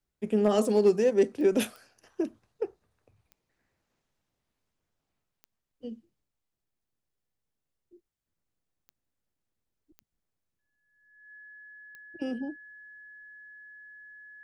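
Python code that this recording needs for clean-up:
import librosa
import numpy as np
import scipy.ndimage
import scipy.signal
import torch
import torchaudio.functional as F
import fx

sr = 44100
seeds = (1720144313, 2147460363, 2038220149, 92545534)

y = fx.fix_declip(x, sr, threshold_db=-13.5)
y = fx.fix_declick_ar(y, sr, threshold=10.0)
y = fx.notch(y, sr, hz=1700.0, q=30.0)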